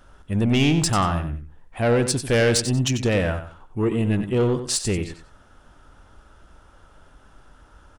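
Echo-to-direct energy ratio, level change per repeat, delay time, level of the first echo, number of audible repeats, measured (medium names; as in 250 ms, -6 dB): -9.5 dB, -12.0 dB, 93 ms, -10.0 dB, 2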